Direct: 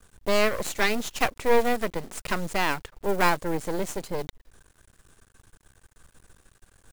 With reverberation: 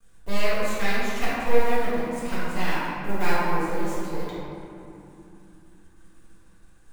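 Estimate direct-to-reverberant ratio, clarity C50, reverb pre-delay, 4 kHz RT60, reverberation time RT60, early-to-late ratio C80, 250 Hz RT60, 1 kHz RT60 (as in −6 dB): −10.5 dB, −4.0 dB, 4 ms, 1.4 s, 2.9 s, −1.5 dB, 4.4 s, 2.8 s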